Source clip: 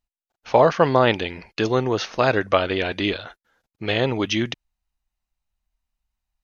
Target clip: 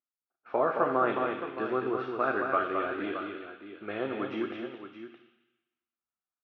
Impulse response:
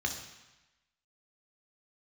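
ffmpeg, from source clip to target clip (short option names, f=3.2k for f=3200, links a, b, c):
-filter_complex "[0:a]highpass=350,equalizer=f=370:t=q:w=4:g=5,equalizer=f=570:t=q:w=4:g=-6,equalizer=f=920:t=q:w=4:g=-8,equalizer=f=1.3k:t=q:w=4:g=9,equalizer=f=1.9k:t=q:w=4:g=-9,lowpass=f=2.2k:w=0.5412,lowpass=f=2.2k:w=1.3066,aecho=1:1:217|620:0.531|0.282,asplit=2[a][b];[1:a]atrim=start_sample=2205,highshelf=f=2.5k:g=11.5[c];[b][c]afir=irnorm=-1:irlink=0,volume=-11dB[d];[a][d]amix=inputs=2:normalize=0,volume=-6.5dB"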